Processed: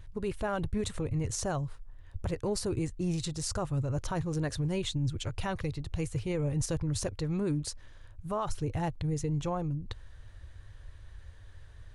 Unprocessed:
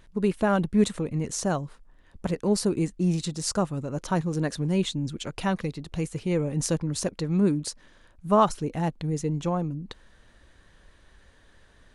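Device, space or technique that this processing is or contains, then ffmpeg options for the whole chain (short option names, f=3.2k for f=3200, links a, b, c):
car stereo with a boomy subwoofer: -af "lowshelf=f=140:t=q:w=3:g=10.5,alimiter=limit=-20.5dB:level=0:latency=1:release=55,volume=-3dB"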